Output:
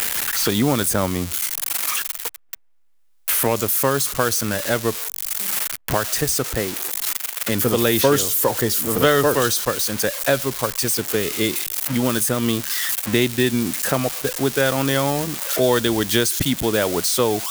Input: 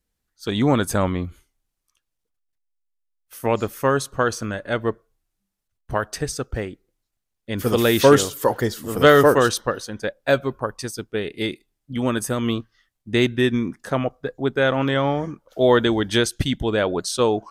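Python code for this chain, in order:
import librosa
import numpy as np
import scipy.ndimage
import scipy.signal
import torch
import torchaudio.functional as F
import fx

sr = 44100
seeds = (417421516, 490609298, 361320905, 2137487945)

y = x + 0.5 * 10.0 ** (-15.5 / 20.0) * np.diff(np.sign(x), prepend=np.sign(x[:1]))
y = fx.band_squash(y, sr, depth_pct=70)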